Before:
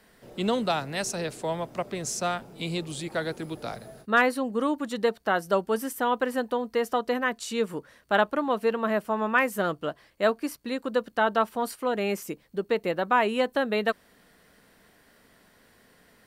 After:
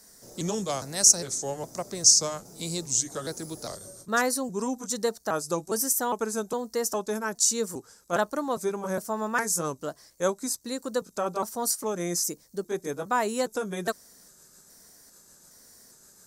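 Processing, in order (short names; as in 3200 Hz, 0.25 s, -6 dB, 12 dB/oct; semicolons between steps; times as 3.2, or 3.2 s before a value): trilling pitch shifter -2.5 st, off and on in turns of 0.408 s; resonant high shelf 4200 Hz +13.5 dB, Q 3; gain -2.5 dB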